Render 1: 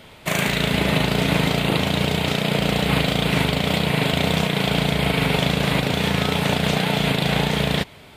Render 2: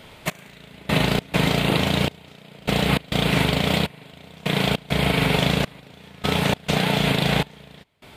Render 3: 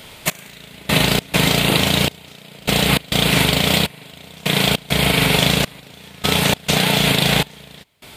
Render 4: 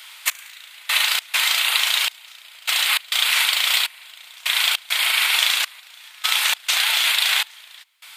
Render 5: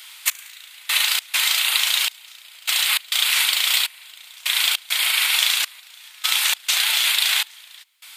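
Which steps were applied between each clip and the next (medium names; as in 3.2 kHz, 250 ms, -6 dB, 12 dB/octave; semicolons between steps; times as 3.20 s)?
trance gate "xx....xx.xxx" 101 bpm -24 dB
treble shelf 3.6 kHz +11.5 dB; trim +2.5 dB
high-pass 1.1 kHz 24 dB/octave
treble shelf 3 kHz +7.5 dB; trim -4.5 dB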